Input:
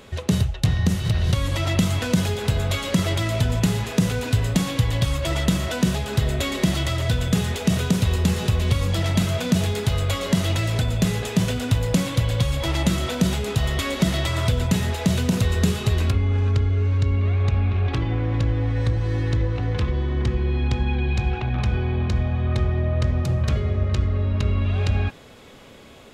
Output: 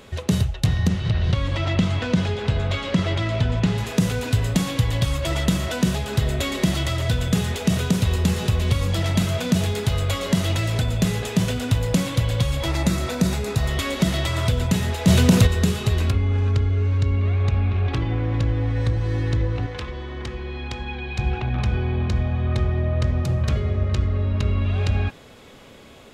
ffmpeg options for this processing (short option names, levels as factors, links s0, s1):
-filter_complex "[0:a]asettb=1/sr,asplit=3[s0][s1][s2];[s0]atrim=end=0.884[s3];[s1]atrim=start=0.88:end=3.78,asetpts=PTS-STARTPTS,afade=t=in:d=0.004:c=qsin,afade=t=out:st=2.896:d=0.004:c=qsin,lowpass=4100[s4];[s2]atrim=start=3.776[s5];[s3][s4]acrossfade=d=0.004:c1=hsin:c2=qsin[s6];[s6][s5]acrossfade=d=0.004:c1=qsin:c2=hsin,asettb=1/sr,asplit=3[s7][s8][s9];[s7]atrim=end=12.694[s10];[s8]atrim=start=12.69:end=13.69,asetpts=PTS-STARTPTS,afade=t=in:d=0.004:c=qsin,afade=t=out:st=0.996:d=0.004:c=qsin,equalizer=f=3100:w=7.9:g=-12[s11];[s9]atrim=start=13.686[s12];[s10][s11]acrossfade=d=0.004:c1=hsin:c2=qsin[s13];[s13][s12]acrossfade=d=0.004:c1=qsin:c2=hsin,asettb=1/sr,asplit=3[s14][s15][s16];[s14]atrim=end=15.074[s17];[s15]atrim=start=15.07:end=15.47,asetpts=PTS-STARTPTS,afade=t=in:d=0.004:c=qsin,afade=t=out:st=0.396:d=0.004:c=qsin,acontrast=80[s18];[s16]atrim=start=15.466[s19];[s17][s18]acrossfade=d=0.004:c1=hsin:c2=qsin[s20];[s20][s19]acrossfade=d=0.004:c1=qsin:c2=hsin,asettb=1/sr,asplit=3[s21][s22][s23];[s21]atrim=end=19.664[s24];[s22]atrim=start=19.66:end=21.19,asetpts=PTS-STARTPTS,afade=t=in:d=0.004:c=qsin,afade=t=out:st=1.526:d=0.004:c=qsin,equalizer=f=110:w=0.37:g=-12[s25];[s23]atrim=start=21.186[s26];[s24][s25]acrossfade=d=0.004:c1=hsin:c2=qsin[s27];[s27][s26]acrossfade=d=0.004:c1=qsin:c2=hsin"